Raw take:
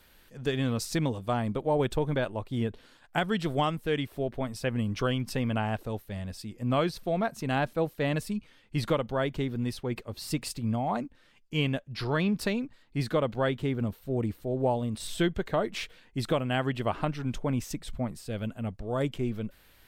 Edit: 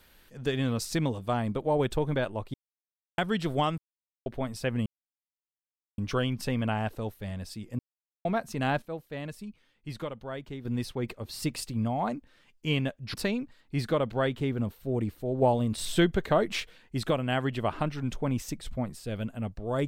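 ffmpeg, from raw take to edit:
ffmpeg -i in.wav -filter_complex "[0:a]asplit=13[link_01][link_02][link_03][link_04][link_05][link_06][link_07][link_08][link_09][link_10][link_11][link_12][link_13];[link_01]atrim=end=2.54,asetpts=PTS-STARTPTS,afade=type=out:start_time=2.536:duration=0.004:curve=hsin[link_14];[link_02]atrim=start=2.54:end=3.18,asetpts=PTS-STARTPTS,volume=0[link_15];[link_03]atrim=start=3.18:end=3.78,asetpts=PTS-STARTPTS,afade=type=in:duration=0.004:curve=hsin,afade=type=out:start_time=0.596:duration=0.004:curve=hsin[link_16];[link_04]atrim=start=3.78:end=4.26,asetpts=PTS-STARTPTS,volume=0[link_17];[link_05]atrim=start=4.26:end=4.86,asetpts=PTS-STARTPTS,afade=type=in:duration=0.004:curve=hsin,afade=type=out:start_time=0.596:duration=0.004:curve=hsin,apad=pad_dur=1.12[link_18];[link_06]atrim=start=4.86:end=6.67,asetpts=PTS-STARTPTS,afade=type=in:duration=0.004:curve=hsin,afade=type=out:start_time=1.806:duration=0.004:curve=hsin[link_19];[link_07]atrim=start=6.67:end=7.13,asetpts=PTS-STARTPTS,volume=0[link_20];[link_08]atrim=start=7.13:end=7.702,asetpts=PTS-STARTPTS,afade=type=in:duration=0.004:curve=hsin[link_21];[link_09]atrim=start=7.698:end=9.532,asetpts=PTS-STARTPTS,volume=-9dB[link_22];[link_10]atrim=start=9.528:end=12.022[link_23];[link_11]atrim=start=12.358:end=14.642[link_24];[link_12]atrim=start=14.638:end=15.822,asetpts=PTS-STARTPTS,volume=3.5dB[link_25];[link_13]atrim=start=15.818[link_26];[link_14][link_15][link_16][link_17][link_18][link_19][link_20][link_21]concat=n=8:v=0:a=1[link_27];[link_27][link_22]acrossfade=duration=0.004:curve1=hsin:curve2=hsin[link_28];[link_28][link_23]acrossfade=duration=0.004:curve1=hsin:curve2=hsin[link_29];[link_29][link_24]acrossfade=duration=0.004:curve1=hsin:curve2=hsin[link_30];[link_30][link_25]acrossfade=duration=0.004:curve1=hsin:curve2=hsin[link_31];[link_31][link_26]acrossfade=duration=0.004:curve1=hsin:curve2=hsin" out.wav

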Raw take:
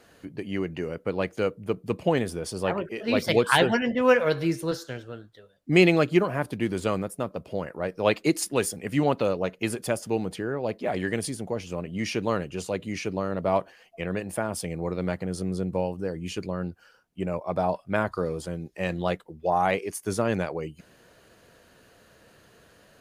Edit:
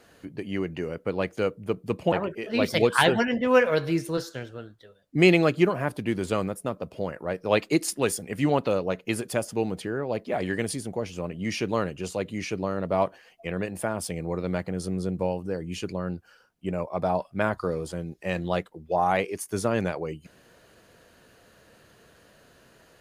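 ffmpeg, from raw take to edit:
ffmpeg -i in.wav -filter_complex "[0:a]asplit=2[link_01][link_02];[link_01]atrim=end=2.122[link_03];[link_02]atrim=start=2.658[link_04];[link_03][link_04]acrossfade=duration=0.004:curve1=hsin:curve2=hsin" out.wav

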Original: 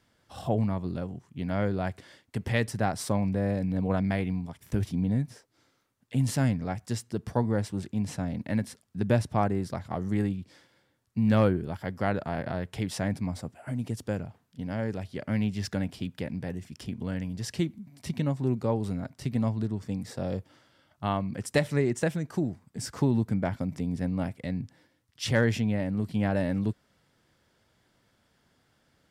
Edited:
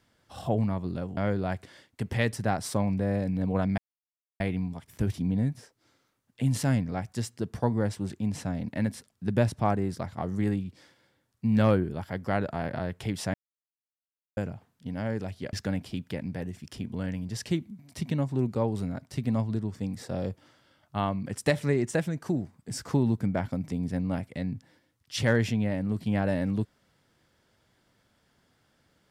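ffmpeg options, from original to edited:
ffmpeg -i in.wav -filter_complex "[0:a]asplit=6[link_01][link_02][link_03][link_04][link_05][link_06];[link_01]atrim=end=1.172[link_07];[link_02]atrim=start=1.518:end=4.13,asetpts=PTS-STARTPTS,afade=type=out:start_time=2.608:duration=0.004:curve=hsin,apad=pad_dur=0.62[link_08];[link_03]atrim=start=4.13:end=13.07,asetpts=PTS-STARTPTS,afade=type=in:duration=0.004:curve=hsin,afade=type=out:start_time=8.936:duration=0.004:curve=hsin[link_09];[link_04]atrim=start=13.07:end=14.1,asetpts=PTS-STARTPTS,volume=0[link_10];[link_05]atrim=start=14.1:end=15.262,asetpts=PTS-STARTPTS,afade=type=in:duration=0.004:curve=hsin[link_11];[link_06]atrim=start=15.608[link_12];[link_08][link_09][link_10][link_11]concat=n=4:v=0:a=1[link_13];[link_07][link_13]acrossfade=duration=0.004:curve1=hsin:curve2=hsin[link_14];[link_14][link_12]acrossfade=duration=0.004:curve1=hsin:curve2=hsin" out.wav

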